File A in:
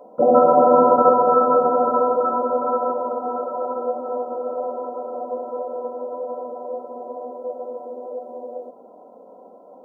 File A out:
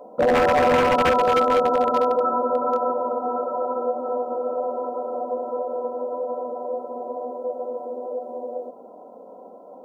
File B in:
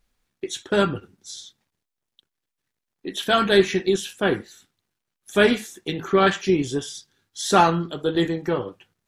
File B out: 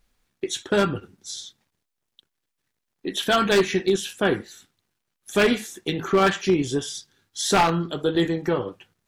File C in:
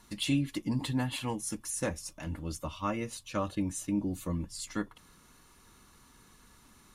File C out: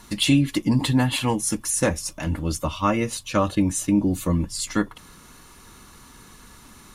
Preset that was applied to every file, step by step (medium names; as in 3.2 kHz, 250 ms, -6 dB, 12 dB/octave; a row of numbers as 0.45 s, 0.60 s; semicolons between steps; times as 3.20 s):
in parallel at -2 dB: compression 12:1, threshold -26 dBFS; on the sum: wavefolder -9 dBFS; normalise loudness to -23 LUFS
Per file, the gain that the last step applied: -3.0 dB, -2.0 dB, +6.5 dB